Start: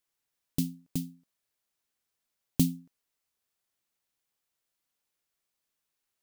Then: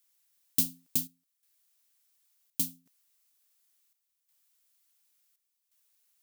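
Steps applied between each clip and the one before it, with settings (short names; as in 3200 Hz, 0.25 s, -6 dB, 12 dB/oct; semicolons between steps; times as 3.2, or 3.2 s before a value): tilt +3.5 dB/oct; chopper 0.7 Hz, depth 65%, duty 75%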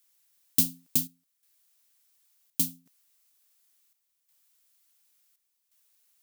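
resonant low shelf 110 Hz -6.5 dB, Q 1.5; gain +3.5 dB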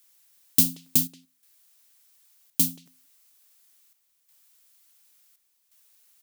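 in parallel at -2 dB: limiter -18 dBFS, peak gain reduction 11 dB; on the sum: speakerphone echo 0.18 s, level -17 dB; gain +2 dB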